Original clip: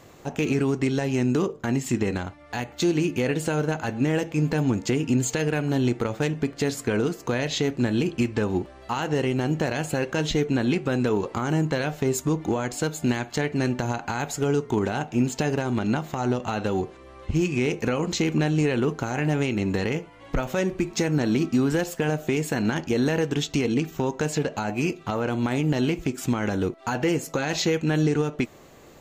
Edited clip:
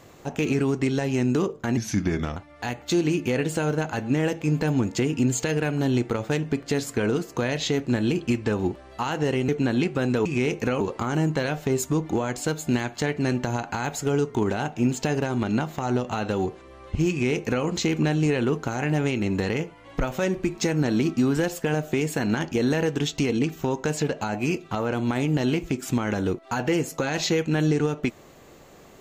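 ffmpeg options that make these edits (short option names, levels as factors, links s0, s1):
-filter_complex "[0:a]asplit=6[s0][s1][s2][s3][s4][s5];[s0]atrim=end=1.774[s6];[s1]atrim=start=1.77:end=2.27,asetpts=PTS-STARTPTS,asetrate=37044,aresample=44100[s7];[s2]atrim=start=2.266:end=9.392[s8];[s3]atrim=start=10.388:end=11.162[s9];[s4]atrim=start=17.458:end=18.012[s10];[s5]atrim=start=11.158[s11];[s6][s7]acrossfade=d=0.004:c1=hsin:c2=hsin[s12];[s12][s8]acrossfade=d=0.004:c1=hsin:c2=hsin[s13];[s13][s9]acrossfade=d=0.004:c1=hsin:c2=hsin[s14];[s14][s10]acrossfade=d=0.004:c1=hsin:c2=hsin[s15];[s15][s11]acrossfade=d=0.004:c1=hsin:c2=hsin"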